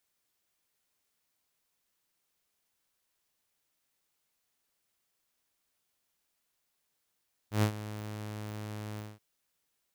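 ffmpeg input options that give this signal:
ffmpeg -f lavfi -i "aevalsrc='0.1*(2*mod(106*t,1)-1)':duration=1.68:sample_rate=44100,afade=type=in:duration=0.115,afade=type=out:start_time=0.115:duration=0.087:silence=0.168,afade=type=out:start_time=1.47:duration=0.21" out.wav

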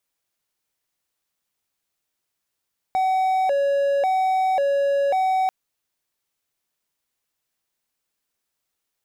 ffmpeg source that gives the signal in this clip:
ffmpeg -f lavfi -i "aevalsrc='0.168*(1-4*abs(mod((657.5*t+97.5/0.92*(0.5-abs(mod(0.92*t,1)-0.5)))+0.25,1)-0.5))':duration=2.54:sample_rate=44100" out.wav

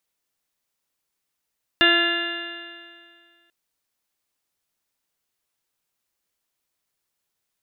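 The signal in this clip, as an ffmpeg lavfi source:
ffmpeg -f lavfi -i "aevalsrc='0.0891*pow(10,-3*t/2.06)*sin(2*PI*340.16*t)+0.0562*pow(10,-3*t/2.06)*sin(2*PI*681.32*t)+0.0188*pow(10,-3*t/2.06)*sin(2*PI*1024.44*t)+0.0668*pow(10,-3*t/2.06)*sin(2*PI*1370.51*t)+0.158*pow(10,-3*t/2.06)*sin(2*PI*1720.49*t)+0.0447*pow(10,-3*t/2.06)*sin(2*PI*2075.31*t)+0.0141*pow(10,-3*t/2.06)*sin(2*PI*2435.9*t)+0.141*pow(10,-3*t/2.06)*sin(2*PI*2803.16*t)+0.0168*pow(10,-3*t/2.06)*sin(2*PI*3177.94*t)+0.0841*pow(10,-3*t/2.06)*sin(2*PI*3561.08*t)+0.0133*pow(10,-3*t/2.06)*sin(2*PI*3953.39*t)':duration=1.69:sample_rate=44100" out.wav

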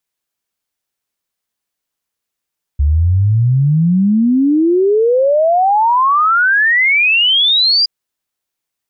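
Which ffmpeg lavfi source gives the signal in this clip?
ffmpeg -f lavfi -i "aevalsrc='0.376*clip(min(t,5.07-t)/0.01,0,1)*sin(2*PI*69*5.07/log(4900/69)*(exp(log(4900/69)*t/5.07)-1))':duration=5.07:sample_rate=44100" out.wav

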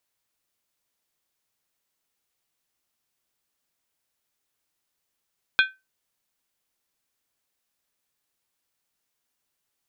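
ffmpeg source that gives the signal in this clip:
ffmpeg -f lavfi -i "aevalsrc='0.237*pow(10,-3*t/0.22)*sin(2*PI*1540*t)+0.15*pow(10,-3*t/0.174)*sin(2*PI*2454.8*t)+0.0944*pow(10,-3*t/0.151)*sin(2*PI*3289.4*t)+0.0596*pow(10,-3*t/0.145)*sin(2*PI*3535.8*t)+0.0376*pow(10,-3*t/0.135)*sin(2*PI*4085.6*t)':duration=0.63:sample_rate=44100" out.wav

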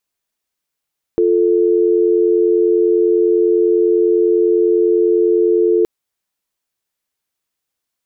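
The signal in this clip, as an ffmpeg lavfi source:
ffmpeg -f lavfi -i "aevalsrc='0.224*(sin(2*PI*350*t)+sin(2*PI*440*t))':duration=4.67:sample_rate=44100" out.wav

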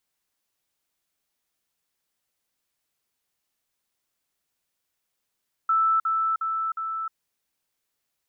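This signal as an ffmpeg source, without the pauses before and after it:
ffmpeg -f lavfi -i "aevalsrc='pow(10,(-18-3*floor(t/0.36))/20)*sin(2*PI*1320*t)*clip(min(mod(t,0.36),0.31-mod(t,0.36))/0.005,0,1)':duration=1.44:sample_rate=44100" out.wav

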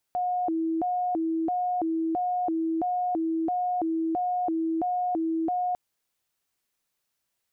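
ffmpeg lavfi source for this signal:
ffmpeg -f lavfi -i "aevalsrc='0.0631*sin(2*PI*(523.5*t+198.5/1.5*(0.5-abs(mod(1.5*t,1)-0.5))))':duration=5.6:sample_rate=44100" out.wav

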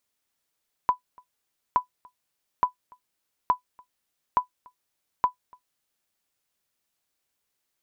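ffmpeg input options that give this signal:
ffmpeg -f lavfi -i "aevalsrc='0.282*(sin(2*PI*996*mod(t,0.87))*exp(-6.91*mod(t,0.87)/0.11)+0.0355*sin(2*PI*996*max(mod(t,0.87)-0.29,0))*exp(-6.91*max(mod(t,0.87)-0.29,0)/0.11))':duration=5.22:sample_rate=44100" out.wav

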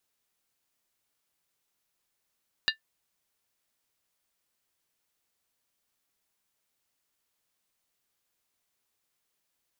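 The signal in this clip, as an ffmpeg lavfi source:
ffmpeg -f lavfi -i "aevalsrc='0.0891*pow(10,-3*t/0.12)*sin(2*PI*1770*t)+0.0794*pow(10,-3*t/0.095)*sin(2*PI*2821.4*t)+0.0708*pow(10,-3*t/0.082)*sin(2*PI*3780.7*t)+0.0631*pow(10,-3*t/0.079)*sin(2*PI*4063.9*t)+0.0562*pow(10,-3*t/0.074)*sin(2*PI*4695.8*t)':duration=0.63:sample_rate=44100" out.wav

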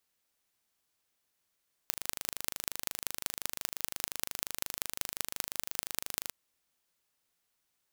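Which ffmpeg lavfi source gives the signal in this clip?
ffmpeg -f lavfi -i "aevalsrc='0.708*eq(mod(n,1716),0)*(0.5+0.5*eq(mod(n,8580),0))':duration=4.41:sample_rate=44100" out.wav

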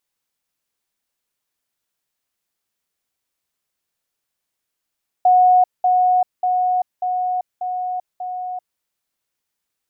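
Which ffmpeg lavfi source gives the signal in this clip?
ffmpeg -f lavfi -i "aevalsrc='pow(10,(-9-3*floor(t/0.59))/20)*sin(2*PI*731*t)*clip(min(mod(t,0.59),0.39-mod(t,0.59))/0.005,0,1)':duration=3.54:sample_rate=44100" out.wav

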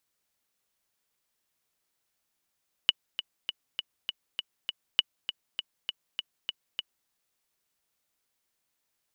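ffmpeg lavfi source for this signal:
ffmpeg -f lavfi -i "aevalsrc='pow(10,(-7-11*gte(mod(t,7*60/200),60/200))/20)*sin(2*PI*2950*mod(t,60/200))*exp(-6.91*mod(t,60/200)/0.03)':duration=4.2:sample_rate=44100" out.wav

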